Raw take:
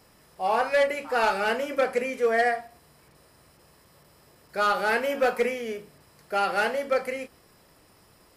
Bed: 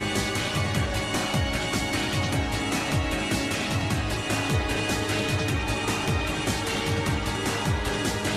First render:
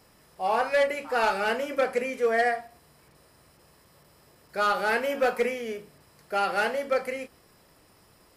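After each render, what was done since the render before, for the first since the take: trim -1 dB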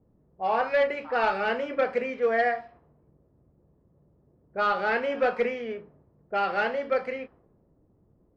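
level-controlled noise filter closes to 320 Hz, open at -24.5 dBFS; Bessel low-pass 3.2 kHz, order 4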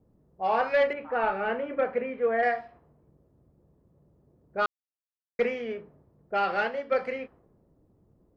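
0.93–2.43 s: distance through air 470 m; 4.66–5.39 s: mute; 6.57–6.98 s: upward expansion, over -36 dBFS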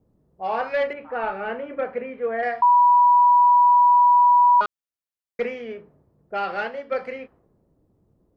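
2.62–4.61 s: bleep 976 Hz -11.5 dBFS

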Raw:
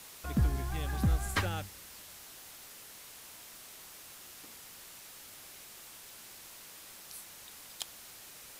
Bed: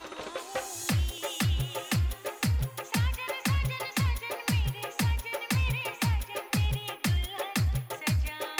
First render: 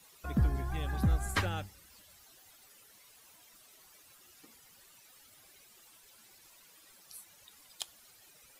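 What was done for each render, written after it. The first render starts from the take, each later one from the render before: noise reduction 13 dB, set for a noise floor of -51 dBFS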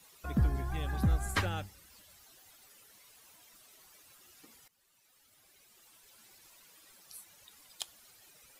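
4.68–6.25 s: fade in, from -17.5 dB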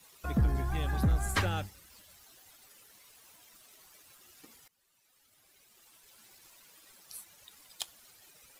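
waveshaping leveller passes 1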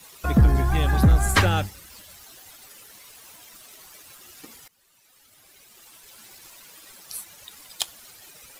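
trim +11 dB

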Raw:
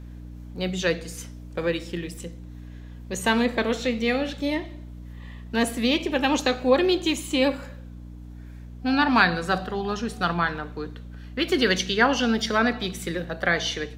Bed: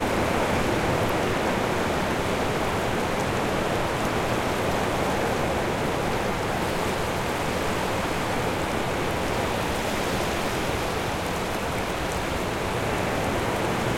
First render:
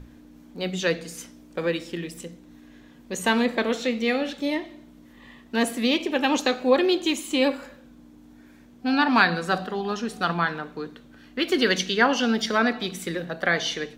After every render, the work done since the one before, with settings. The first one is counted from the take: hum notches 60/120/180 Hz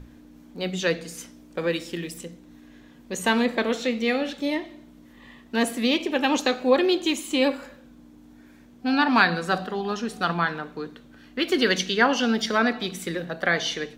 1.70–2.18 s: treble shelf 4.7 kHz +6 dB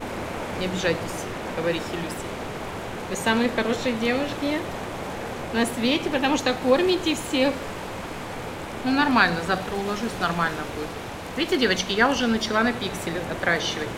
add bed -7.5 dB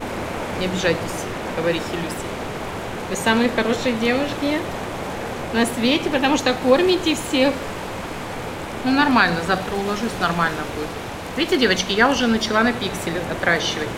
trim +4 dB; peak limiter -3 dBFS, peak gain reduction 2.5 dB

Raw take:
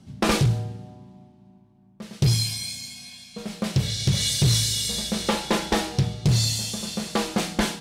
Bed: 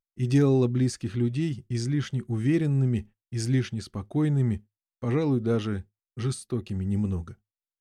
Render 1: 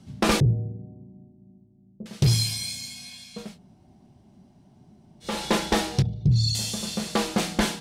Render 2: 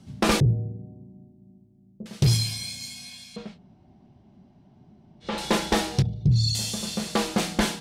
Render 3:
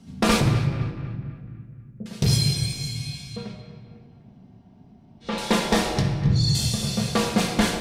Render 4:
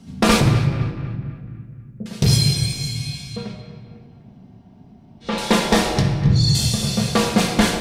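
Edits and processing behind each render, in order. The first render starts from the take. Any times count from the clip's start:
0.40–2.06 s: inverse Chebyshev low-pass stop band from 3 kHz, stop band 80 dB; 3.47–5.32 s: room tone, crossfade 0.24 s; 6.02–6.55 s: resonances exaggerated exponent 2
2.37–2.81 s: peaking EQ 13 kHz -4.5 dB 2.1 oct; 3.36–5.38 s: low-pass 3.9 kHz
band-passed feedback delay 250 ms, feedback 47%, band-pass 1.6 kHz, level -12 dB; simulated room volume 2800 m³, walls mixed, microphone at 1.7 m
trim +4.5 dB

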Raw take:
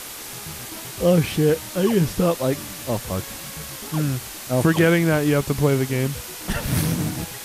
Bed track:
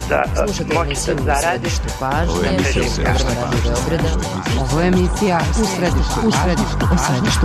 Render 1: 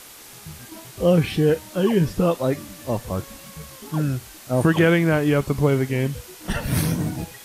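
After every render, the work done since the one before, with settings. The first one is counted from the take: noise print and reduce 8 dB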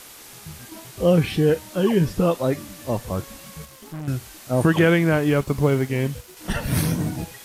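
3.65–4.08 s: valve stage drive 30 dB, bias 0.75; 5.21–6.37 s: companding laws mixed up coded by A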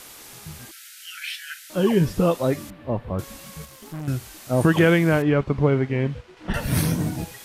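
0.71–1.70 s: brick-wall FIR high-pass 1.3 kHz; 2.70–3.19 s: distance through air 480 m; 5.22–6.54 s: low-pass 2.7 kHz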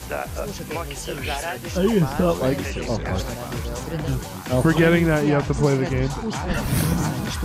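add bed track -11.5 dB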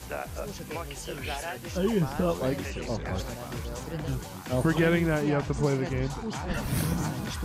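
trim -7 dB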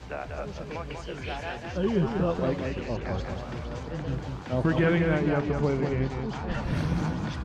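distance through air 160 m; delay 192 ms -5 dB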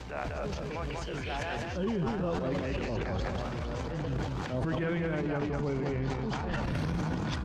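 transient shaper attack -7 dB, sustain +10 dB; compression, threshold -28 dBFS, peak gain reduction 9 dB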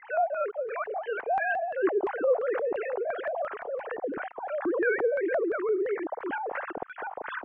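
formants replaced by sine waves; LFO low-pass square 2.9 Hz 730–1700 Hz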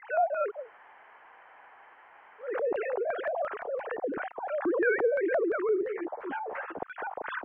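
0.58–2.50 s: room tone, crossfade 0.24 s; 5.81–6.79 s: three-phase chorus

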